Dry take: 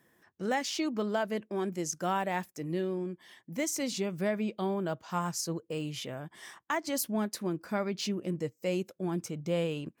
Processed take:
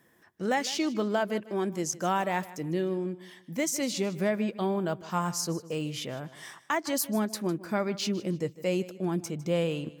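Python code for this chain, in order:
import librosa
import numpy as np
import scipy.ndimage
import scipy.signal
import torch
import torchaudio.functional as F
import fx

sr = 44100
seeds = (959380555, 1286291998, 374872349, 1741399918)

y = fx.echo_feedback(x, sr, ms=154, feedback_pct=31, wet_db=-17.5)
y = y * librosa.db_to_amplitude(3.0)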